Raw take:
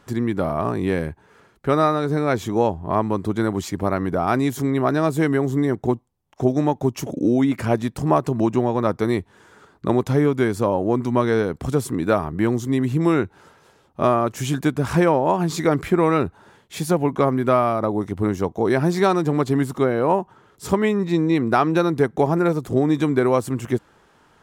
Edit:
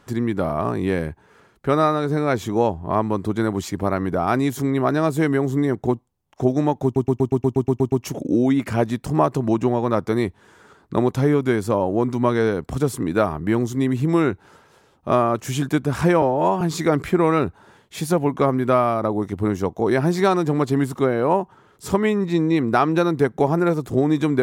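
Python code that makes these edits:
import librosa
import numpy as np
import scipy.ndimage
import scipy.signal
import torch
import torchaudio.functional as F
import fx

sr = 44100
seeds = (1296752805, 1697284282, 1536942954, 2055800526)

y = fx.edit(x, sr, fx.stutter(start_s=6.84, slice_s=0.12, count=10),
    fx.stretch_span(start_s=15.14, length_s=0.26, factor=1.5), tone=tone)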